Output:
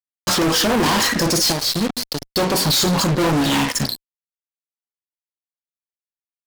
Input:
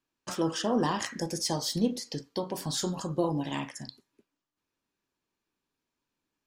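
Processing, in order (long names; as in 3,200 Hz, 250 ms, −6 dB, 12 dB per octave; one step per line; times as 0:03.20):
parametric band 4,200 Hz +10.5 dB 0.44 octaves
hum removal 243.5 Hz, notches 12
0:01.52–0:02.22: power curve on the samples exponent 2
fuzz pedal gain 46 dB, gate −47 dBFS
level −2.5 dB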